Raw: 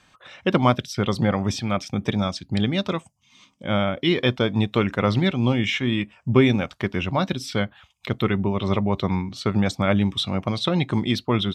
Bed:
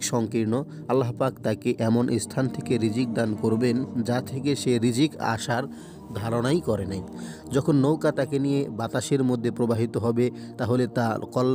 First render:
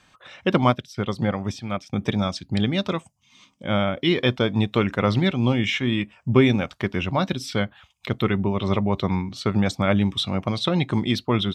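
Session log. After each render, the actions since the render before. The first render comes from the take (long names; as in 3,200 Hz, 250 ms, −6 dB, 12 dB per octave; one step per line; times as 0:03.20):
0:00.64–0:01.93: expander for the loud parts, over −33 dBFS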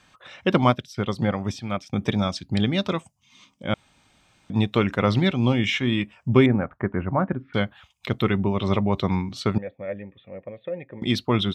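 0:03.74–0:04.50: fill with room tone
0:06.46–0:07.54: Butterworth low-pass 1,800 Hz
0:09.58–0:11.02: formant resonators in series e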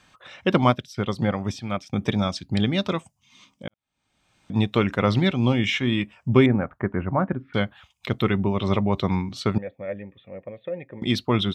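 0:03.68–0:04.52: fade in quadratic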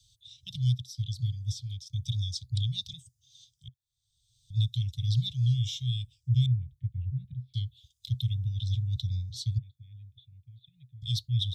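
Chebyshev band-stop filter 130–3,500 Hz, order 5
dynamic equaliser 4,100 Hz, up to −3 dB, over −45 dBFS, Q 1.7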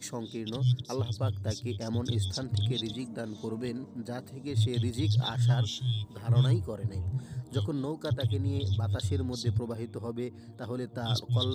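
mix in bed −12.5 dB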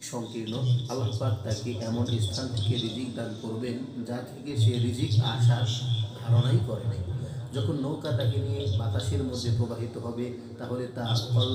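echo through a band-pass that steps 533 ms, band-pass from 450 Hz, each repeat 0.7 octaves, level −12 dB
coupled-rooms reverb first 0.39 s, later 4.8 s, from −21 dB, DRR 0 dB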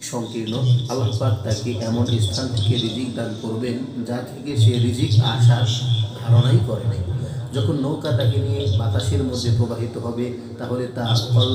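level +8 dB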